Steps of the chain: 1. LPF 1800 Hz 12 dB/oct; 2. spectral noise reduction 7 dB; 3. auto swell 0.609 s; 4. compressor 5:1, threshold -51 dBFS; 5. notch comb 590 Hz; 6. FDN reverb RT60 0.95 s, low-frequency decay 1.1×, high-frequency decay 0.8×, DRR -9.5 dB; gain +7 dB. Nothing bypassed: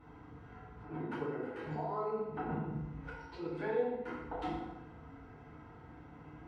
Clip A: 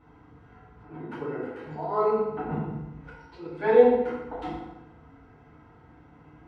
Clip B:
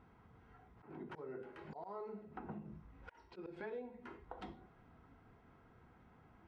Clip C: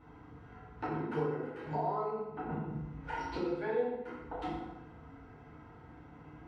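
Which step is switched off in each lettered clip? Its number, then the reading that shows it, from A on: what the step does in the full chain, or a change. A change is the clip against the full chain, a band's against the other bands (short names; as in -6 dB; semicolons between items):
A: 4, mean gain reduction 3.5 dB; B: 6, 4 kHz band +3.0 dB; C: 3, 1 kHz band +2.0 dB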